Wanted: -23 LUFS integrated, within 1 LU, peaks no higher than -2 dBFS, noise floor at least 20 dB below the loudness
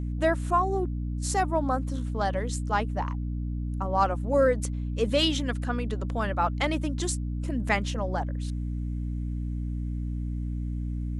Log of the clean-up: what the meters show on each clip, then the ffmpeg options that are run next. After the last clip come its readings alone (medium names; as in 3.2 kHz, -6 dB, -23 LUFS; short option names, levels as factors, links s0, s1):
hum 60 Hz; highest harmonic 300 Hz; hum level -28 dBFS; loudness -28.5 LUFS; peak level -10.5 dBFS; loudness target -23.0 LUFS
-> -af "bandreject=f=60:t=h:w=6,bandreject=f=120:t=h:w=6,bandreject=f=180:t=h:w=6,bandreject=f=240:t=h:w=6,bandreject=f=300:t=h:w=6"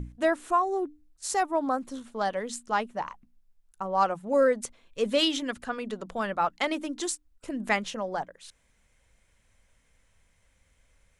hum not found; loudness -29.0 LUFS; peak level -11.0 dBFS; loudness target -23.0 LUFS
-> -af "volume=2"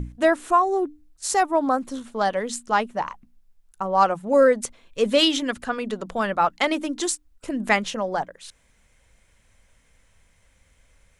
loudness -23.0 LUFS; peak level -5.0 dBFS; noise floor -62 dBFS